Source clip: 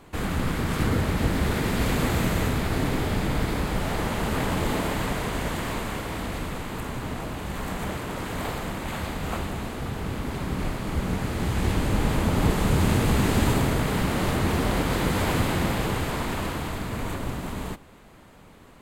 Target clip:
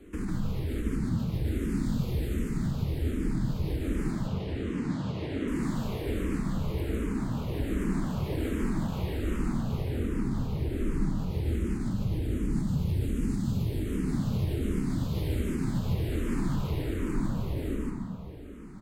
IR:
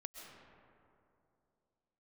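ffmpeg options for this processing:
-filter_complex "[0:a]lowshelf=f=490:t=q:w=1.5:g=9,acrossover=split=230|3000[s0][s1][s2];[s1]acompressor=threshold=0.0562:ratio=6[s3];[s0][s3][s2]amix=inputs=3:normalize=0,alimiter=limit=0.15:level=0:latency=1:release=213,asettb=1/sr,asplit=3[s4][s5][s6];[s4]atrim=end=4.124[s7];[s5]atrim=start=4.12:end=5.48,asetpts=PTS-STARTPTS,afade=t=in:d=0.004:c=qsin,afade=t=out:st=1.356:d=0.004:c=qsin,highpass=120,lowpass=4900[s8];[s6]atrim=start=5.476[s9];[s7][s8]acrossfade=d=0.004:c1=hsin:c2=qsin[s10];[s10][s9]acrossfade=d=0.004:c1=qsin:c2=hsin,aecho=1:1:148.7|192.4:0.794|0.282[s11];[1:a]atrim=start_sample=2205[s12];[s11][s12]afir=irnorm=-1:irlink=0,asplit=2[s13][s14];[s14]afreqshift=-1.3[s15];[s13][s15]amix=inputs=2:normalize=1"

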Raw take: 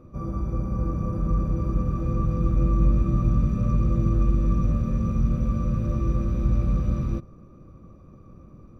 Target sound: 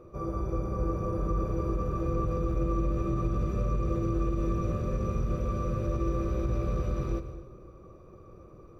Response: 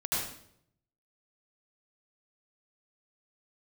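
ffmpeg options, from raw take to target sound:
-filter_complex "[0:a]asplit=2[s0][s1];[1:a]atrim=start_sample=2205,asetrate=29106,aresample=44100[s2];[s1][s2]afir=irnorm=-1:irlink=0,volume=0.0944[s3];[s0][s3]amix=inputs=2:normalize=0,alimiter=limit=0.178:level=0:latency=1:release=49,lowshelf=f=310:t=q:w=3:g=-6"

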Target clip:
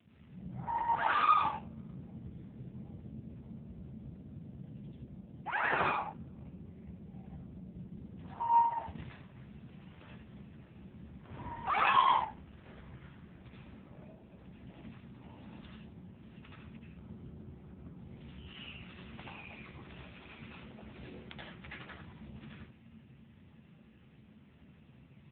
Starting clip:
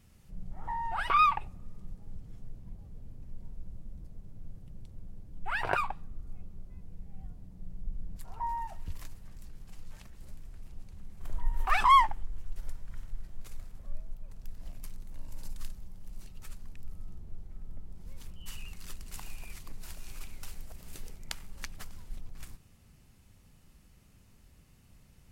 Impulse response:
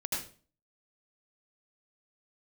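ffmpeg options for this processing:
-filter_complex "[0:a]acrossover=split=450[s0][s1];[s1]asoftclip=type=tanh:threshold=0.0422[s2];[s0][s2]amix=inputs=2:normalize=0,asettb=1/sr,asplit=3[s3][s4][s5];[s3]atrim=end=15.664[s6];[s4]atrim=start=15.66:end=16.35,asetpts=PTS-STARTPTS,afade=t=in:d=0.004:c=qsin,afade=t=out:st=0.686:d=0.004:c=qsin,aemphasis=mode=reproduction:type=50fm[s7];[s5]atrim=start=16.346[s8];[s6][s7]acrossfade=d=0.004:c1=hsin:c2=qsin[s9];[s9][s8]acrossfade=d=0.004:c1=qsin:c2=hsin,aecho=1:1:79:0.447[s10];[1:a]atrim=start_sample=2205,afade=t=out:st=0.19:d=0.01,atrim=end_sample=8820[s11];[s10][s11]afir=irnorm=-1:irlink=0,volume=1.5" -ar 8000 -c:a libopencore_amrnb -b:a 5900

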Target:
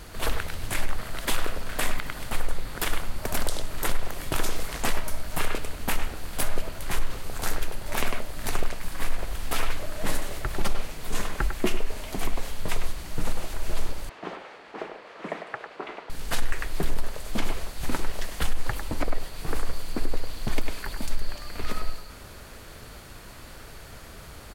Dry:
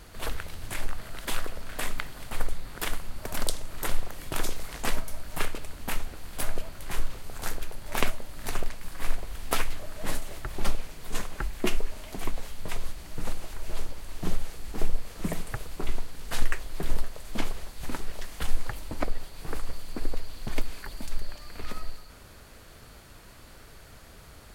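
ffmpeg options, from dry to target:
-filter_complex "[0:a]asettb=1/sr,asplit=3[s0][s1][s2];[s0]atrim=end=14.094[s3];[s1]atrim=start=14.09:end=16.1,asetpts=PTS-STARTPTS,afade=t=in:d=0.004:c=qsin,afade=t=out:st=2.006:d=0.004:c=qsin,highpass=460,lowpass=2300[s4];[s2]atrim=start=16.096[s5];[s3][s4]acrossfade=d=0.004:c1=hsin:c2=qsin[s6];[s6][s5]acrossfade=d=0.004:c1=qsin:c2=hsin,asplit=2[s7][s8];[s8]adelay=100,highpass=300,lowpass=3400,asoftclip=type=hard:threshold=0.178,volume=0.447[s9];[s7][s9]amix=inputs=2:normalize=0,alimiter=limit=0.126:level=0:latency=1:release=72,volume=1.88"

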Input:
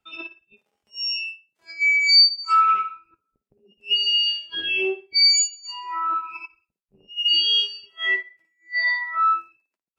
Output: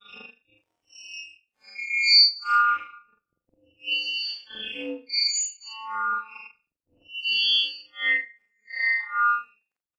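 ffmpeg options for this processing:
-af "afftfilt=real='re':imag='-im':win_size=4096:overlap=0.75,adynamicequalizer=threshold=0.00501:dfrequency=1700:dqfactor=6.9:tfrequency=1700:tqfactor=6.9:attack=5:release=100:ratio=0.375:range=4:mode=boostabove:tftype=bell,aeval=exprs='val(0)*sin(2*PI*110*n/s)':c=same,volume=1.26"

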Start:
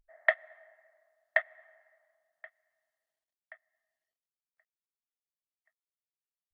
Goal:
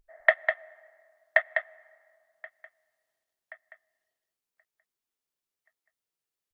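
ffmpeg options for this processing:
-af "equalizer=f=400:w=2.2:g=4.5,aecho=1:1:201:0.501,volume=1.68"

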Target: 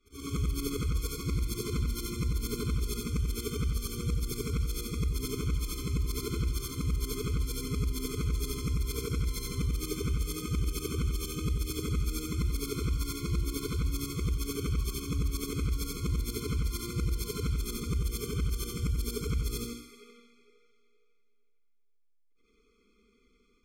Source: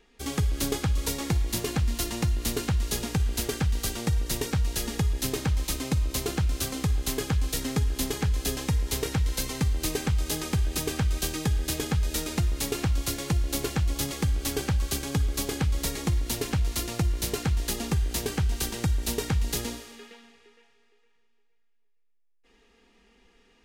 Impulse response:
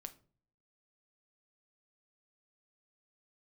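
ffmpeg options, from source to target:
-af "afftfilt=real='re':imag='-im':win_size=8192:overlap=0.75,afftfilt=real='re*eq(mod(floor(b*sr/1024/510),2),0)':imag='im*eq(mod(floor(b*sr/1024/510),2),0)':win_size=1024:overlap=0.75"

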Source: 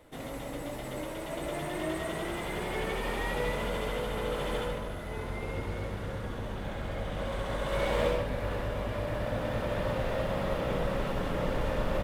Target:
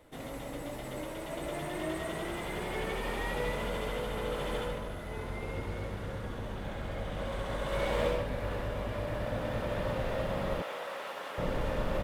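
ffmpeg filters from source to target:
-filter_complex "[0:a]asettb=1/sr,asplit=3[s0][s1][s2];[s0]atrim=end=10.624[s3];[s1]atrim=start=10.62:end=11.38,asetpts=PTS-STARTPTS,afade=t=in:d=0.004:c=qsin,afade=t=out:st=0.756:d=0.004:c=qsin,highpass=700[s4];[s2]atrim=start=11.376[s5];[s3][s4]acrossfade=d=0.004:c1=hsin:c2=qsin[s6];[s6][s5]acrossfade=d=0.004:c1=qsin:c2=hsin,volume=0.794"

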